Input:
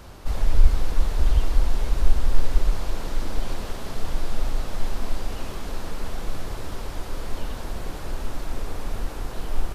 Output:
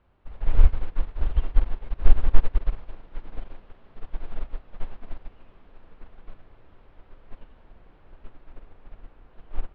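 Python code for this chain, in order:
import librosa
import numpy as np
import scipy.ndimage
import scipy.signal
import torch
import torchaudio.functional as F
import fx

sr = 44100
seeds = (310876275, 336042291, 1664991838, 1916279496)

y = scipy.signal.sosfilt(scipy.signal.butter(4, 3000.0, 'lowpass', fs=sr, output='sos'), x)
y = fx.echo_multitap(y, sr, ms=(65, 171), db=(-13.0, -15.5))
y = fx.upward_expand(y, sr, threshold_db=-24.0, expansion=2.5)
y = F.gain(torch.from_numpy(y), 4.5).numpy()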